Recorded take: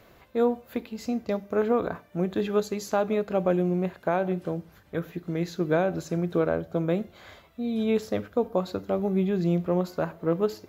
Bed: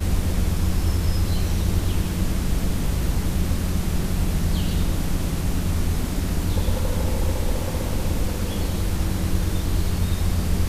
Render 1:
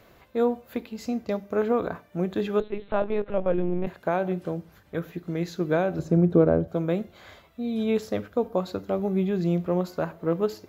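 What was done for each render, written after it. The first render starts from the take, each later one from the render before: 2.60–3.87 s: LPC vocoder at 8 kHz pitch kept; 5.99–6.68 s: tilt shelf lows +9 dB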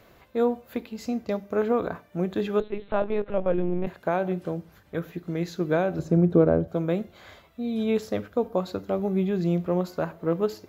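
no audible change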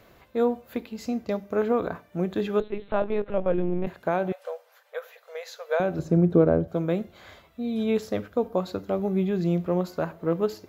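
4.32–5.80 s: brick-wall FIR high-pass 450 Hz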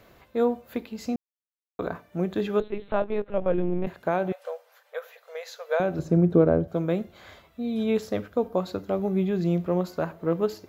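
1.16–1.79 s: mute; 3.01–3.42 s: upward expansion, over -34 dBFS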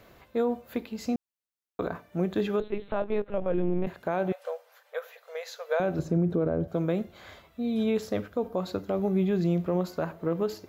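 peak limiter -17.5 dBFS, peak gain reduction 10 dB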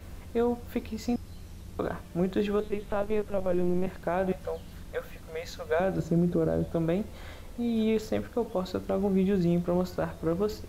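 add bed -22.5 dB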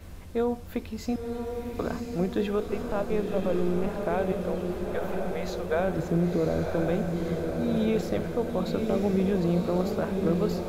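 echo that smears into a reverb 1014 ms, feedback 62%, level -4 dB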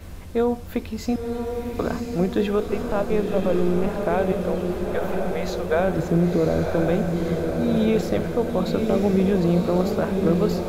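trim +5.5 dB

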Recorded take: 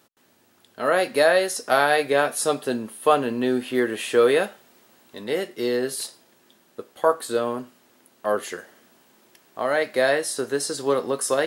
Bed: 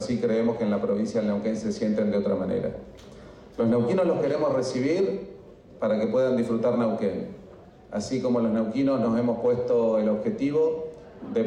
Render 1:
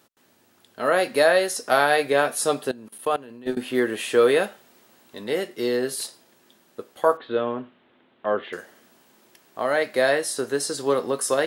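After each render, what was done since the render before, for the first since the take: 2.71–3.57 s: level held to a coarse grid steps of 21 dB; 7.17–8.53 s: Chebyshev low-pass 3.6 kHz, order 5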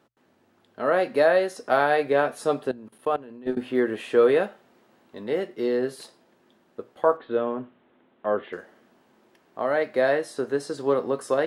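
low-pass 1.3 kHz 6 dB/octave; hum notches 60/120 Hz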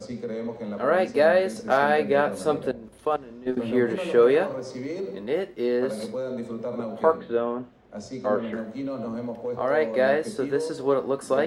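add bed -8 dB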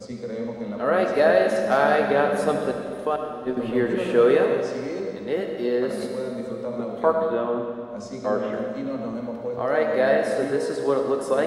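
algorithmic reverb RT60 2.1 s, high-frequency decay 0.95×, pre-delay 35 ms, DRR 3.5 dB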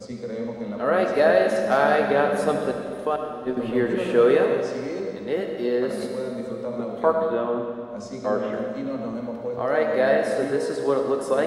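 no audible change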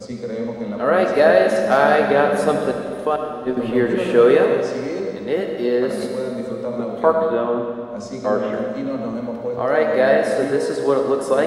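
trim +4.5 dB

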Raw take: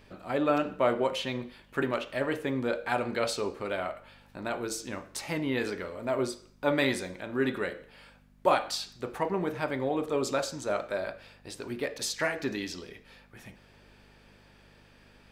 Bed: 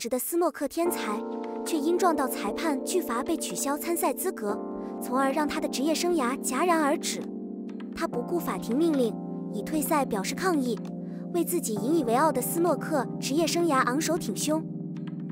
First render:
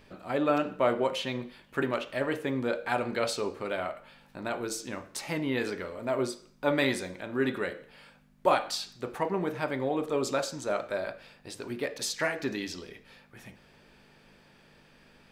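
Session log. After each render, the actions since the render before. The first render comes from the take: de-hum 50 Hz, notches 2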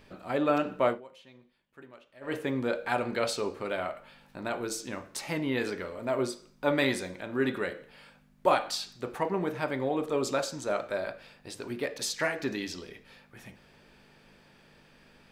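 0.87–2.35 s: dip -21.5 dB, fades 0.14 s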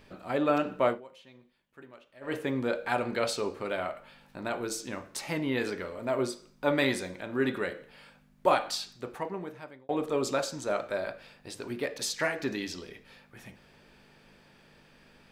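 8.73–9.89 s: fade out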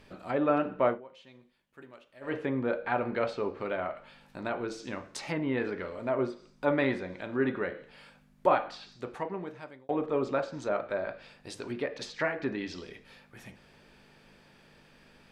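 low-pass that closes with the level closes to 2.1 kHz, closed at -28.5 dBFS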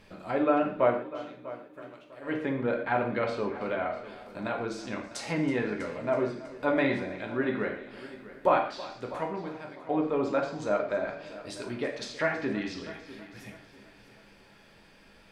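multi-head delay 324 ms, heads first and second, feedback 41%, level -18 dB; gated-style reverb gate 170 ms falling, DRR 2.5 dB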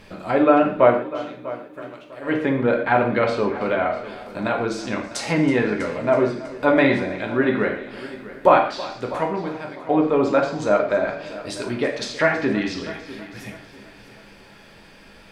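trim +9.5 dB

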